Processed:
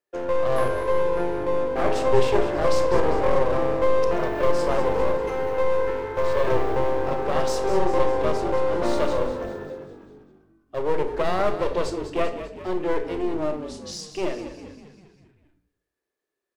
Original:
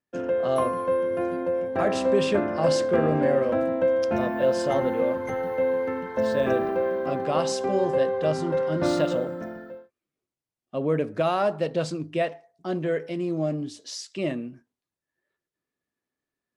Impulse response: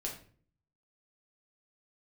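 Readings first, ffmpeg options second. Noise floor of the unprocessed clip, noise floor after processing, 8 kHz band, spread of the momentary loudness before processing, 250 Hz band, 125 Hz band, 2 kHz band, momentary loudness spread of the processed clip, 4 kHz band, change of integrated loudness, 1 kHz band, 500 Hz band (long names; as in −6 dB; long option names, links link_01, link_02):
below −85 dBFS, −83 dBFS, 0.0 dB, 9 LU, −2.0 dB, −0.5 dB, +1.5 dB, 11 LU, +0.5 dB, +1.0 dB, +3.5 dB, +1.0 dB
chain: -filter_complex "[0:a]lowshelf=frequency=290:width_type=q:width=3:gain=-9.5,aeval=exprs='clip(val(0),-1,0.0335)':channel_layout=same,asplit=7[link_01][link_02][link_03][link_04][link_05][link_06][link_07];[link_02]adelay=198,afreqshift=-49,volume=-11dB[link_08];[link_03]adelay=396,afreqshift=-98,volume=-16dB[link_09];[link_04]adelay=594,afreqshift=-147,volume=-21.1dB[link_10];[link_05]adelay=792,afreqshift=-196,volume=-26.1dB[link_11];[link_06]adelay=990,afreqshift=-245,volume=-31.1dB[link_12];[link_07]adelay=1188,afreqshift=-294,volume=-36.2dB[link_13];[link_01][link_08][link_09][link_10][link_11][link_12][link_13]amix=inputs=7:normalize=0,asplit=2[link_14][link_15];[1:a]atrim=start_sample=2205,adelay=33[link_16];[link_15][link_16]afir=irnorm=-1:irlink=0,volume=-9.5dB[link_17];[link_14][link_17]amix=inputs=2:normalize=0"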